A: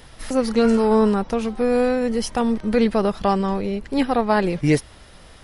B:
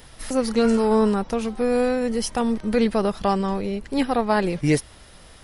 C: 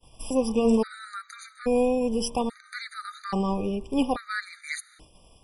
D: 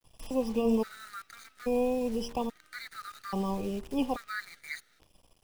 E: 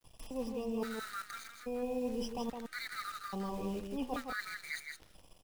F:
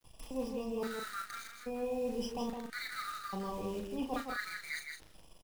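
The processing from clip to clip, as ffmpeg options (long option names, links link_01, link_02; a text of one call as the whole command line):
ffmpeg -i in.wav -af "highshelf=frequency=7000:gain=7,volume=-2dB" out.wav
ffmpeg -i in.wav -af "bandreject=frequency=78.11:width_type=h:width=4,bandreject=frequency=156.22:width_type=h:width=4,bandreject=frequency=234.33:width_type=h:width=4,bandreject=frequency=312.44:width_type=h:width=4,bandreject=frequency=390.55:width_type=h:width=4,bandreject=frequency=468.66:width_type=h:width=4,bandreject=frequency=546.77:width_type=h:width=4,bandreject=frequency=624.88:width_type=h:width=4,bandreject=frequency=702.99:width_type=h:width=4,bandreject=frequency=781.1:width_type=h:width=4,bandreject=frequency=859.21:width_type=h:width=4,bandreject=frequency=937.32:width_type=h:width=4,bandreject=frequency=1015.43:width_type=h:width=4,bandreject=frequency=1093.54:width_type=h:width=4,bandreject=frequency=1171.65:width_type=h:width=4,bandreject=frequency=1249.76:width_type=h:width=4,agate=range=-33dB:threshold=-40dB:ratio=3:detection=peak,afftfilt=real='re*gt(sin(2*PI*0.6*pts/sr)*(1-2*mod(floor(b*sr/1024/1200),2)),0)':imag='im*gt(sin(2*PI*0.6*pts/sr)*(1-2*mod(floor(b*sr/1024/1200),2)),0)':win_size=1024:overlap=0.75,volume=-1.5dB" out.wav
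ffmpeg -i in.wav -filter_complex "[0:a]acrossover=split=350|1200|5300[link_01][link_02][link_03][link_04];[link_04]acompressor=threshold=-54dB:ratio=6[link_05];[link_01][link_02][link_03][link_05]amix=inputs=4:normalize=0,acrusher=bits=8:dc=4:mix=0:aa=0.000001,volume=-5.5dB" out.wav
ffmpeg -i in.wav -af "areverse,acompressor=threshold=-39dB:ratio=4,areverse,aecho=1:1:163:0.531,volume=2dB" out.wav
ffmpeg -i in.wav -filter_complex "[0:a]asplit=2[link_01][link_02];[link_02]adelay=38,volume=-6dB[link_03];[link_01][link_03]amix=inputs=2:normalize=0" out.wav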